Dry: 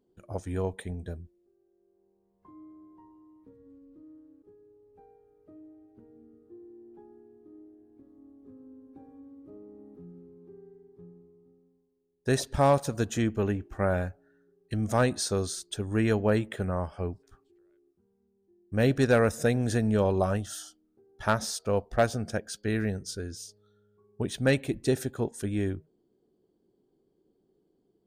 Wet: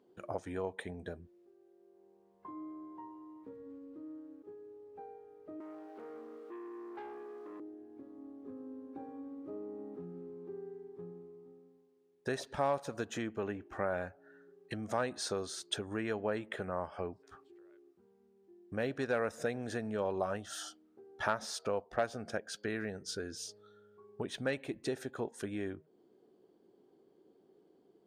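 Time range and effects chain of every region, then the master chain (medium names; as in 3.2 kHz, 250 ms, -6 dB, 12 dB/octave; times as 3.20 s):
5.60–7.60 s: high-pass 540 Hz + waveshaping leveller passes 3
whole clip: low-pass 1.8 kHz 6 dB/octave; compression 3:1, threshold -43 dBFS; high-pass 690 Hz 6 dB/octave; trim +12 dB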